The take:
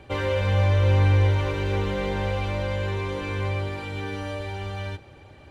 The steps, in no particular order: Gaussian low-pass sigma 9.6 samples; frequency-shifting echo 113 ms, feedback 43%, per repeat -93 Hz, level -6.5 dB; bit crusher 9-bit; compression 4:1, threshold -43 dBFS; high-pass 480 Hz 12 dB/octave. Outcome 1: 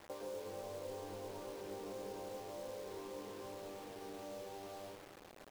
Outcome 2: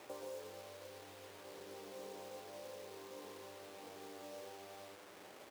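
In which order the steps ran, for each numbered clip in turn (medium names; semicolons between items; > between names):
high-pass > compression > Gaussian low-pass > frequency-shifting echo > bit crusher; frequency-shifting echo > Gaussian low-pass > compression > bit crusher > high-pass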